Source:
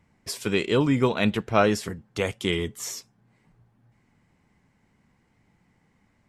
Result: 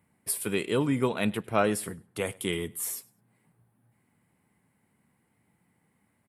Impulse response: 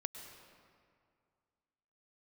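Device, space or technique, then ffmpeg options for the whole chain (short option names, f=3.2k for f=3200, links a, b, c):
budget condenser microphone: -filter_complex "[0:a]highpass=98,highshelf=f=7.9k:t=q:w=3:g=10,asettb=1/sr,asplit=3[a][b][c];[a]atrim=end=0.814[d];[b]atrim=start=0.81:end=2.36,asetpts=PTS-STARTPTS,afade=t=in:d=0.004:c=qsin,afade=t=out:st=1.546:d=0.004:c=qsin,lowpass=11k[e];[c]atrim=start=2.356[f];[d][e]acrossfade=d=0.004:c1=hsin:c2=qsin[g];[g][f]acrossfade=d=0.004:c1=qsin:c2=hsin,aecho=1:1:101|202:0.0631|0.0126,volume=-4.5dB"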